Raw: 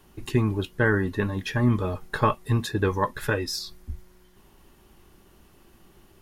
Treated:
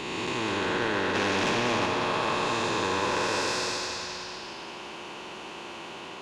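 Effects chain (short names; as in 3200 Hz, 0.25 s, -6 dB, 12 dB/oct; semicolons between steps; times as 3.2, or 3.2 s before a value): time blur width 0.486 s; on a send at -10.5 dB: reverb RT60 0.40 s, pre-delay 50 ms; 1.15–1.86 on the sum: sample leveller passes 2; speaker cabinet 310–6400 Hz, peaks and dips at 340 Hz +5 dB, 490 Hz +4 dB, 1200 Hz -7 dB, 1800 Hz -5 dB, 2600 Hz +8 dB, 5400 Hz -5 dB; in parallel at -6 dB: soft clip -31.5 dBFS, distortion -9 dB; on the sum: bell 1000 Hz +12.5 dB 0.55 oct; split-band echo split 660 Hz, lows 0.136 s, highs 0.197 s, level -7.5 dB; spectral compressor 2:1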